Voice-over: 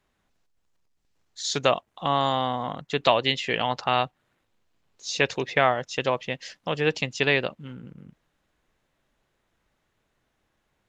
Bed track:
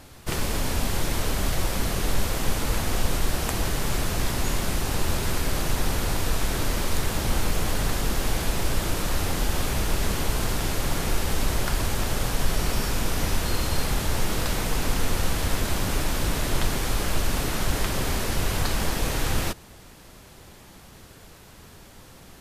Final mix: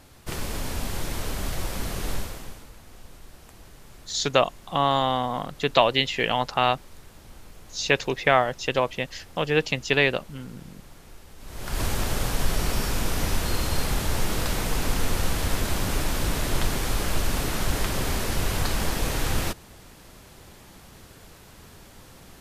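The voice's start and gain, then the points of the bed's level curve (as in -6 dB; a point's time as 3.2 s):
2.70 s, +1.5 dB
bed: 2.14 s -4.5 dB
2.73 s -22.5 dB
11.37 s -22.5 dB
11.81 s -0.5 dB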